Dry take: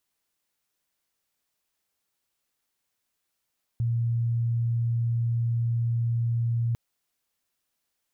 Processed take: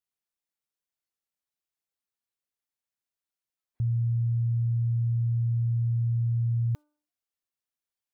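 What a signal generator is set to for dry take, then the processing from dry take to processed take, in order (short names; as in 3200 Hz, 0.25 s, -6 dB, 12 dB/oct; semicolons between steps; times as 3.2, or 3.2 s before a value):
tone sine 117 Hz -22.5 dBFS 2.95 s
de-hum 298.3 Hz, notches 5; spectral noise reduction 14 dB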